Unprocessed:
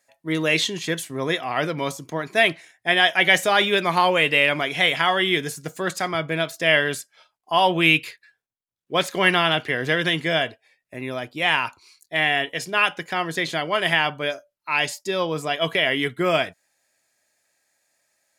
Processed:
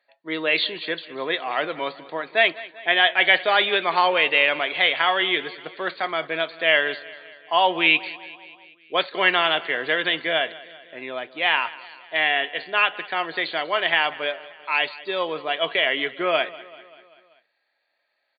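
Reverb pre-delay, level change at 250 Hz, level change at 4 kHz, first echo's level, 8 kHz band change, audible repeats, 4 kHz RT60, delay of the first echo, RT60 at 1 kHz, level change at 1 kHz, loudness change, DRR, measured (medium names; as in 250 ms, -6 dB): no reverb, -6.5 dB, 0.0 dB, -19.0 dB, under -40 dB, 4, no reverb, 194 ms, no reverb, 0.0 dB, -0.5 dB, no reverb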